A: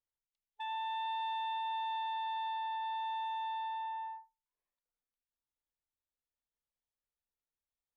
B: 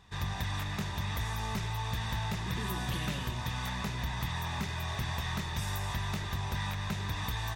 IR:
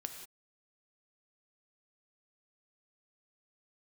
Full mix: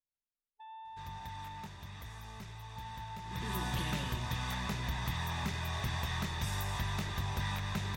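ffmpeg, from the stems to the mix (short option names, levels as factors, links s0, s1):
-filter_complex "[0:a]lowpass=3700,equalizer=f=2300:w=0.44:g=-15,volume=0.75,asplit=3[s0][s1][s2];[s0]atrim=end=1.66,asetpts=PTS-STARTPTS,afade=t=out:st=1.656:d=0.004:c=hsin[s3];[s1]atrim=start=1.66:end=2.76,asetpts=PTS-STARTPTS,volume=0[s4];[s2]atrim=start=2.76,asetpts=PTS-STARTPTS,afade=t=in:d=0.004:c=hsin[s5];[s3][s4][s5]concat=n=3:v=0:a=1[s6];[1:a]adelay=850,volume=0.75,afade=t=in:st=3.22:d=0.35:silence=0.266073,asplit=2[s7][s8];[s8]volume=0.224[s9];[2:a]atrim=start_sample=2205[s10];[s9][s10]afir=irnorm=-1:irlink=0[s11];[s6][s7][s11]amix=inputs=3:normalize=0"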